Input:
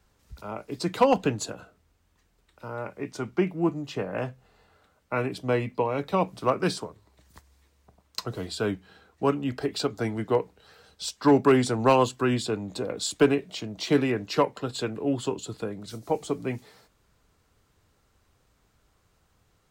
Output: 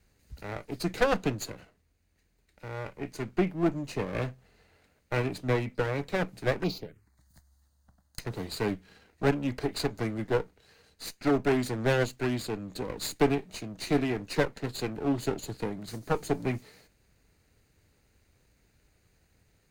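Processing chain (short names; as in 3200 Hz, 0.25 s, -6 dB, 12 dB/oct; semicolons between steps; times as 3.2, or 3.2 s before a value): minimum comb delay 0.45 ms; vocal rider within 4 dB 2 s; 6.63–8.2 envelope phaser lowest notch 390 Hz, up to 1700 Hz, full sweep at -26 dBFS; gain -3 dB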